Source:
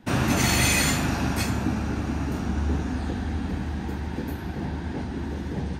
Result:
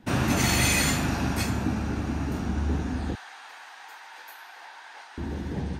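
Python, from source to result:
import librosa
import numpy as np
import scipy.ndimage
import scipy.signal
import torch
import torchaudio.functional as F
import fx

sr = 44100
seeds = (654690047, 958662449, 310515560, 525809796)

y = fx.highpass(x, sr, hz=850.0, slope=24, at=(3.15, 5.18))
y = F.gain(torch.from_numpy(y), -1.5).numpy()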